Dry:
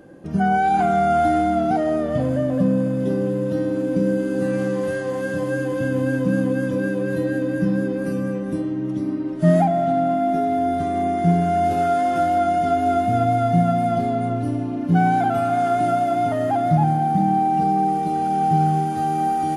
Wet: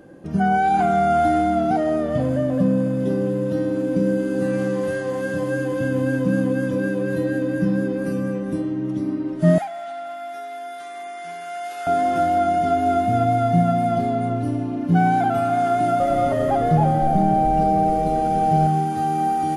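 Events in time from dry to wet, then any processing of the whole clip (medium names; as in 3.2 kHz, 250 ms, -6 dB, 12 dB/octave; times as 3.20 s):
9.58–11.87 s: high-pass 1.3 kHz
15.70–18.67 s: frequency-shifting echo 297 ms, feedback 37%, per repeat -150 Hz, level -7 dB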